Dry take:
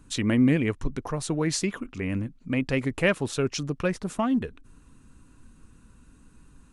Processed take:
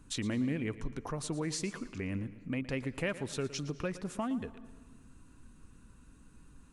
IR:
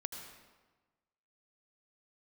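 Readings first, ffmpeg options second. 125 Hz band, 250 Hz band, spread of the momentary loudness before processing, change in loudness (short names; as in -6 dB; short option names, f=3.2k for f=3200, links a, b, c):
-9.5 dB, -10.0 dB, 10 LU, -10.0 dB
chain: -filter_complex "[0:a]acompressor=threshold=-33dB:ratio=2,asplit=2[a][b];[1:a]atrim=start_sample=2205,adelay=115[c];[b][c]afir=irnorm=-1:irlink=0,volume=-13dB[d];[a][d]amix=inputs=2:normalize=0,volume=-3.5dB"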